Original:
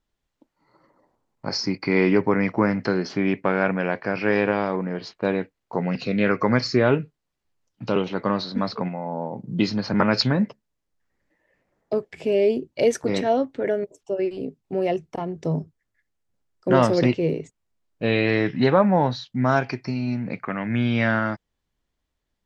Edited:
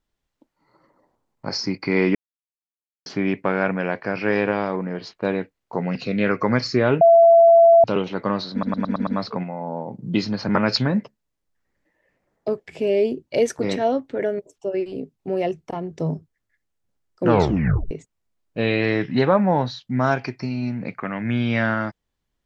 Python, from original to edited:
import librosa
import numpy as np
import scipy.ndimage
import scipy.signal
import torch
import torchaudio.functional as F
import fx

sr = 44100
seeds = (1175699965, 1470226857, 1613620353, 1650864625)

y = fx.edit(x, sr, fx.silence(start_s=2.15, length_s=0.91),
    fx.bleep(start_s=7.01, length_s=0.83, hz=672.0, db=-8.0),
    fx.stutter(start_s=8.52, slice_s=0.11, count=6),
    fx.tape_stop(start_s=16.68, length_s=0.68), tone=tone)